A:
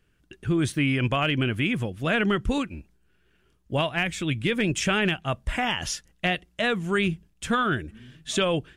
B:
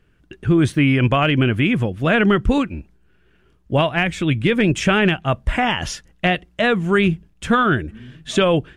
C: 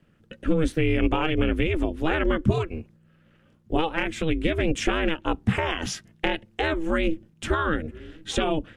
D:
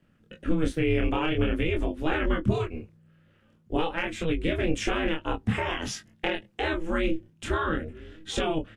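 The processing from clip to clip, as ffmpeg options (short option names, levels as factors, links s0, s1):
-af "highshelf=f=3600:g=-10.5,volume=2.66"
-filter_complex "[0:a]acrossover=split=160[s0][s1];[s1]acompressor=threshold=0.0708:ratio=2[s2];[s0][s2]amix=inputs=2:normalize=0,aeval=exprs='val(0)*sin(2*PI*160*n/s)':c=same"
-filter_complex "[0:a]flanger=delay=22.5:depth=7.9:speed=0.49,asplit=2[s0][s1];[s1]adelay=19,volume=0.211[s2];[s0][s2]amix=inputs=2:normalize=0"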